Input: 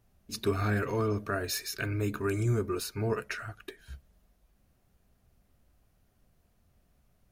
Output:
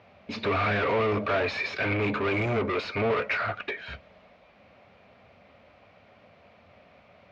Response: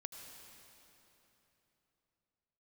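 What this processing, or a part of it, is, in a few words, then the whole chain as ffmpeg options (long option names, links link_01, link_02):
overdrive pedal into a guitar cabinet: -filter_complex "[0:a]asplit=2[link_01][link_02];[link_02]highpass=frequency=720:poles=1,volume=30dB,asoftclip=type=tanh:threshold=-18dB[link_03];[link_01][link_03]amix=inputs=2:normalize=0,lowpass=frequency=1700:poles=1,volume=-6dB,highpass=84,equalizer=frequency=91:width_type=q:width=4:gain=5,equalizer=frequency=140:width_type=q:width=4:gain=-4,equalizer=frequency=350:width_type=q:width=4:gain=-7,equalizer=frequency=570:width_type=q:width=4:gain=6,equalizer=frequency=1600:width_type=q:width=4:gain=-4,equalizer=frequency=2300:width_type=q:width=4:gain=8,lowpass=frequency=4300:width=0.5412,lowpass=frequency=4300:width=1.3066"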